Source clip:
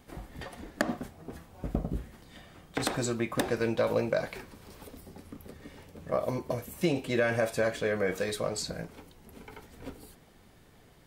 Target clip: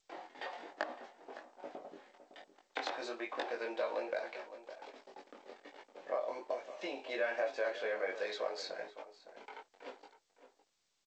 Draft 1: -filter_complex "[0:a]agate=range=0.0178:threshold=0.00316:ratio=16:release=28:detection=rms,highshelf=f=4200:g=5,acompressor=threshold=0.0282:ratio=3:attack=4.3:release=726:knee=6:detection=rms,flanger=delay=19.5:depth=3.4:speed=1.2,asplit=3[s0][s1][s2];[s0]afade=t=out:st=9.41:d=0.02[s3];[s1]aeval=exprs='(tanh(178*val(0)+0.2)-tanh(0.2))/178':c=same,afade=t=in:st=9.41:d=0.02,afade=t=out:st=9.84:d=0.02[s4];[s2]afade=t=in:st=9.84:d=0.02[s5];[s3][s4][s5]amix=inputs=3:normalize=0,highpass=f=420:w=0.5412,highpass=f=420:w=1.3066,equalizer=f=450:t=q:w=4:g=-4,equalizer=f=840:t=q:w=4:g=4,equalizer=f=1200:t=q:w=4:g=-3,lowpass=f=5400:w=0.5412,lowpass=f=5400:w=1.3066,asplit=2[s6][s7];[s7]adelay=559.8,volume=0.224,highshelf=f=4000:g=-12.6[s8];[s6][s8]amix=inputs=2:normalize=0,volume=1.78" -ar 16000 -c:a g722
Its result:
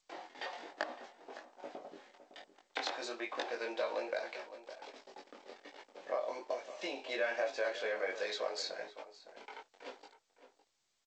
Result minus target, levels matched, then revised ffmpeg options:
8 kHz band +5.5 dB
-filter_complex "[0:a]agate=range=0.0178:threshold=0.00316:ratio=16:release=28:detection=rms,highshelf=f=4200:g=-5.5,acompressor=threshold=0.0282:ratio=3:attack=4.3:release=726:knee=6:detection=rms,flanger=delay=19.5:depth=3.4:speed=1.2,asplit=3[s0][s1][s2];[s0]afade=t=out:st=9.41:d=0.02[s3];[s1]aeval=exprs='(tanh(178*val(0)+0.2)-tanh(0.2))/178':c=same,afade=t=in:st=9.41:d=0.02,afade=t=out:st=9.84:d=0.02[s4];[s2]afade=t=in:st=9.84:d=0.02[s5];[s3][s4][s5]amix=inputs=3:normalize=0,highpass=f=420:w=0.5412,highpass=f=420:w=1.3066,equalizer=f=450:t=q:w=4:g=-4,equalizer=f=840:t=q:w=4:g=4,equalizer=f=1200:t=q:w=4:g=-3,lowpass=f=5400:w=0.5412,lowpass=f=5400:w=1.3066,asplit=2[s6][s7];[s7]adelay=559.8,volume=0.224,highshelf=f=4000:g=-12.6[s8];[s6][s8]amix=inputs=2:normalize=0,volume=1.78" -ar 16000 -c:a g722

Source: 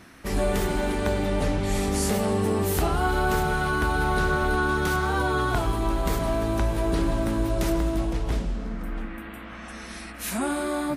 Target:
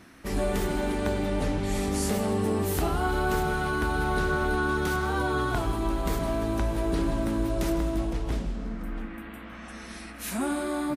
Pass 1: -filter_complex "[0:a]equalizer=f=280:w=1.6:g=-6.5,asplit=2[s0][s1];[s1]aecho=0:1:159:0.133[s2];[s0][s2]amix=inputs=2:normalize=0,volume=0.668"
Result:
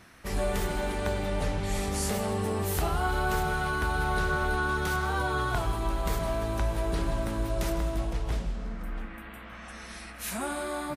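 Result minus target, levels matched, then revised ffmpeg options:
250 Hz band -4.5 dB
-filter_complex "[0:a]equalizer=f=280:w=1.6:g=3,asplit=2[s0][s1];[s1]aecho=0:1:159:0.133[s2];[s0][s2]amix=inputs=2:normalize=0,volume=0.668"

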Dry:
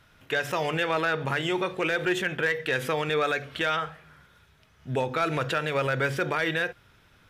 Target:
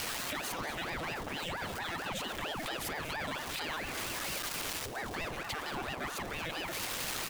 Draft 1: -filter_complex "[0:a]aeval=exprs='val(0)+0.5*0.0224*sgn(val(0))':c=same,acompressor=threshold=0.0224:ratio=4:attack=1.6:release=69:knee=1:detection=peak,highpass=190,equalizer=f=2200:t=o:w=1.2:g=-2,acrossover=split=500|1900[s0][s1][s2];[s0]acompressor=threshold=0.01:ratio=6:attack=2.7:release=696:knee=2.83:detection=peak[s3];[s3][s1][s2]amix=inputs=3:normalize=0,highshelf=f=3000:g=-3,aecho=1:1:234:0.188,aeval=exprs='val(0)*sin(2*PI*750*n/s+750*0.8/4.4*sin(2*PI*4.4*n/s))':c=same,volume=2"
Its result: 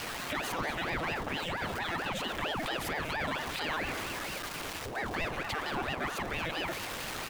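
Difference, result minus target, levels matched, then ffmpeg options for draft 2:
8 kHz band -6.0 dB; compression: peak gain reduction -6 dB
-filter_complex "[0:a]aeval=exprs='val(0)+0.5*0.0224*sgn(val(0))':c=same,acompressor=threshold=0.00891:ratio=4:attack=1.6:release=69:knee=1:detection=peak,highpass=190,equalizer=f=2200:t=o:w=1.2:g=-2,acrossover=split=500|1900[s0][s1][s2];[s0]acompressor=threshold=0.01:ratio=6:attack=2.7:release=696:knee=2.83:detection=peak[s3];[s3][s1][s2]amix=inputs=3:normalize=0,highshelf=f=3000:g=6,aecho=1:1:234:0.188,aeval=exprs='val(0)*sin(2*PI*750*n/s+750*0.8/4.4*sin(2*PI*4.4*n/s))':c=same,volume=2"

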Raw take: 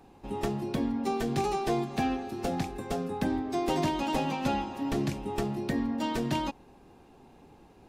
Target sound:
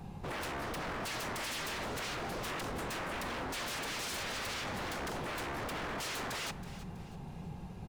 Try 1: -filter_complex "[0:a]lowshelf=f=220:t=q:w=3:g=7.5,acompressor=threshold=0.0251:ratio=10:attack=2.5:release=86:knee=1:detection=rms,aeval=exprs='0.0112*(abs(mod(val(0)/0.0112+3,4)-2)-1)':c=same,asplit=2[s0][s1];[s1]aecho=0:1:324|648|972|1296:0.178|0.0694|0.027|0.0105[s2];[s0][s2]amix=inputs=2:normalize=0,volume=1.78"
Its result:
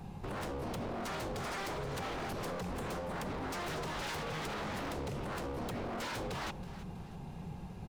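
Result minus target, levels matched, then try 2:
compression: peak gain reduction +7 dB
-filter_complex "[0:a]lowshelf=f=220:t=q:w=3:g=7.5,acompressor=threshold=0.0631:ratio=10:attack=2.5:release=86:knee=1:detection=rms,aeval=exprs='0.0112*(abs(mod(val(0)/0.0112+3,4)-2)-1)':c=same,asplit=2[s0][s1];[s1]aecho=0:1:324|648|972|1296:0.178|0.0694|0.027|0.0105[s2];[s0][s2]amix=inputs=2:normalize=0,volume=1.78"

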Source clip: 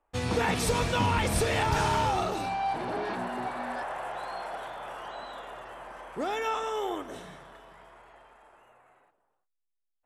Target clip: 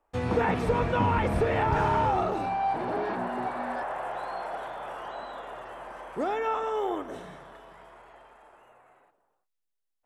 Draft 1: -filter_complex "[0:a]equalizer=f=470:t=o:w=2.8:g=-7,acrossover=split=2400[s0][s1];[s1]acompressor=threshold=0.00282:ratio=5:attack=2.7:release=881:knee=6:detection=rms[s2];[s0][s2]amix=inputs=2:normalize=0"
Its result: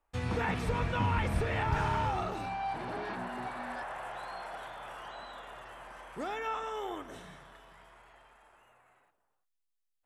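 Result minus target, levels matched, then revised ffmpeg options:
500 Hz band -3.5 dB
-filter_complex "[0:a]equalizer=f=470:t=o:w=2.8:g=3,acrossover=split=2400[s0][s1];[s1]acompressor=threshold=0.00282:ratio=5:attack=2.7:release=881:knee=6:detection=rms[s2];[s0][s2]amix=inputs=2:normalize=0"

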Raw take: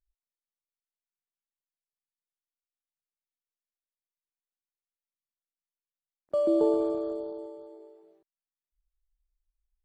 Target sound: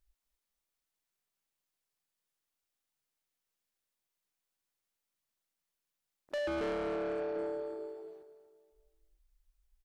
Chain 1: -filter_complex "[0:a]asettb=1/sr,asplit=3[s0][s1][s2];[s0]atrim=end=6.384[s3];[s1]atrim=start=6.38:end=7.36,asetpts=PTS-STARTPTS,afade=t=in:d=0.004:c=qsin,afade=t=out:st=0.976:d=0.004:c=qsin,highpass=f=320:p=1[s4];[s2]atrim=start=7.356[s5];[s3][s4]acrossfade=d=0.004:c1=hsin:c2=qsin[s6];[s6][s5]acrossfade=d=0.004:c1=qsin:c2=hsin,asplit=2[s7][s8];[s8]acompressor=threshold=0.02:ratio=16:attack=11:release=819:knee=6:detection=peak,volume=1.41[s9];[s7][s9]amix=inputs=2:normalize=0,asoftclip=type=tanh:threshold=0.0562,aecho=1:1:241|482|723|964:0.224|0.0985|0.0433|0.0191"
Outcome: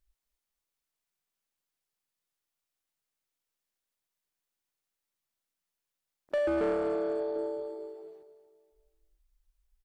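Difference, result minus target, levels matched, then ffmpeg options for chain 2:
saturation: distortion -6 dB
-filter_complex "[0:a]asettb=1/sr,asplit=3[s0][s1][s2];[s0]atrim=end=6.384[s3];[s1]atrim=start=6.38:end=7.36,asetpts=PTS-STARTPTS,afade=t=in:d=0.004:c=qsin,afade=t=out:st=0.976:d=0.004:c=qsin,highpass=f=320:p=1[s4];[s2]atrim=start=7.356[s5];[s3][s4]acrossfade=d=0.004:c1=hsin:c2=qsin[s6];[s6][s5]acrossfade=d=0.004:c1=qsin:c2=hsin,asplit=2[s7][s8];[s8]acompressor=threshold=0.02:ratio=16:attack=11:release=819:knee=6:detection=peak,volume=1.41[s9];[s7][s9]amix=inputs=2:normalize=0,asoftclip=type=tanh:threshold=0.0224,aecho=1:1:241|482|723|964:0.224|0.0985|0.0433|0.0191"

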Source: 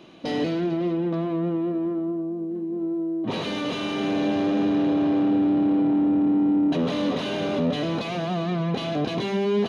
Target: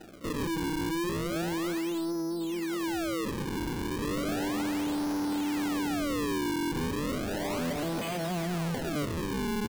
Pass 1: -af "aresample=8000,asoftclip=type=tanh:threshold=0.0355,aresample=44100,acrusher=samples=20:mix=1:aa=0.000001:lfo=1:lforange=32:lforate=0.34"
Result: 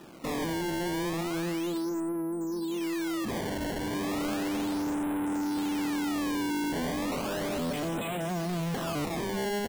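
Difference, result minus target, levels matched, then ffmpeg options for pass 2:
decimation with a swept rate: distortion -7 dB
-af "aresample=8000,asoftclip=type=tanh:threshold=0.0355,aresample=44100,acrusher=samples=39:mix=1:aa=0.000001:lfo=1:lforange=62.4:lforate=0.34"

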